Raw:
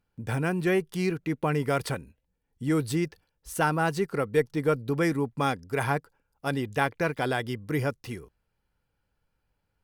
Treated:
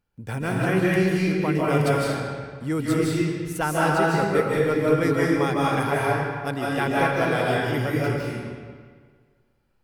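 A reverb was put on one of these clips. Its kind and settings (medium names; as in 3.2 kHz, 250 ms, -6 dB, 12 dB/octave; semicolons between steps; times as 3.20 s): algorithmic reverb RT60 1.7 s, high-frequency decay 0.8×, pre-delay 115 ms, DRR -6 dB; trim -1 dB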